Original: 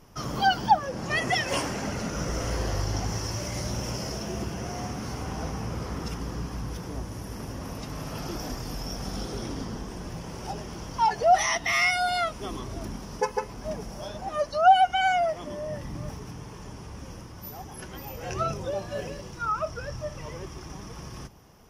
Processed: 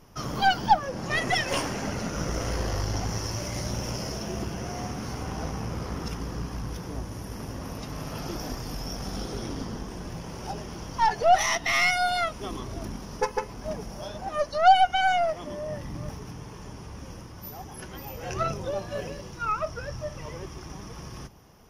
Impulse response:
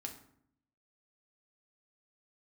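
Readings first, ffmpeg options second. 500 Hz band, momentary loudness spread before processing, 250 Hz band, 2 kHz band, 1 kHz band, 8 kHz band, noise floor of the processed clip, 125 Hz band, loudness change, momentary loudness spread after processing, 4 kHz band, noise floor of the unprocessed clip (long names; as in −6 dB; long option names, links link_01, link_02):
0.0 dB, 18 LU, 0.0 dB, +0.5 dB, 0.0 dB, 0.0 dB, −42 dBFS, 0.0 dB, 0.0 dB, 18 LU, +0.5 dB, −42 dBFS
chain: -af "aeval=exprs='0.376*(cos(1*acos(clip(val(0)/0.376,-1,1)))-cos(1*PI/2))+0.0299*(cos(6*acos(clip(val(0)/0.376,-1,1)))-cos(6*PI/2))':channel_layout=same,bandreject=frequency=7800:width=6.6"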